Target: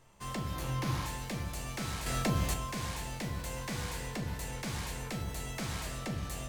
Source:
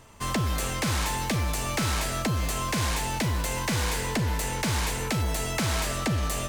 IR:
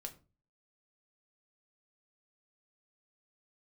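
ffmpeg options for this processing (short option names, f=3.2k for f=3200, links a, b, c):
-filter_complex "[0:a]asettb=1/sr,asplit=3[a][b][c];[a]atrim=end=0.544[d];[b]atrim=start=0.54:end=1.05,asetpts=PTS-STARTPTS,afade=t=in:d=0.004:c=qsin,afade=t=out:st=0.506:d=0.004:c=qsin,equalizer=f=125:t=o:w=0.33:g=12,equalizer=f=315:t=o:w=0.33:g=9,equalizer=f=1k:t=o:w=0.33:g=7,equalizer=f=8k:t=o:w=0.33:g=-8[e];[c]atrim=start=1.046[f];[d][e]acrossfade=d=0.004:c1=hsin:c2=qsin[g];[g][f]acrossfade=d=0.004:c1=qsin:c2=hsin,asettb=1/sr,asplit=3[h][i][j];[h]atrim=end=2.064[k];[i]atrim=start=2.06:end=2.54,asetpts=PTS-STARTPTS,afade=t=in:d=0.004:c=qsin,afade=t=out:st=0.476:d=0.004:c=qsin,acontrast=84[l];[j]atrim=start=2.536[m];[k][l]acrossfade=d=0.004:c1=hsin:c2=qsin[n];[n][m]acrossfade=d=0.004:c1=qsin:c2=hsin[o];[1:a]atrim=start_sample=2205[p];[o][p]afir=irnorm=-1:irlink=0,volume=-7dB"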